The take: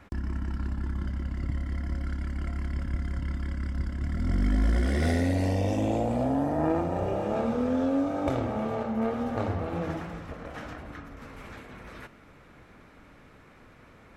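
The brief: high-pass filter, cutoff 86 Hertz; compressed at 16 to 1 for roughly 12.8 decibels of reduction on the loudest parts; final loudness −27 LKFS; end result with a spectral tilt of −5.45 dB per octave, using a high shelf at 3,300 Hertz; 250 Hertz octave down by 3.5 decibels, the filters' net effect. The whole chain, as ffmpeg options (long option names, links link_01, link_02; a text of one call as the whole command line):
ffmpeg -i in.wav -af "highpass=86,equalizer=frequency=250:width_type=o:gain=-4,highshelf=frequency=3300:gain=-8.5,acompressor=threshold=-37dB:ratio=16,volume=15.5dB" out.wav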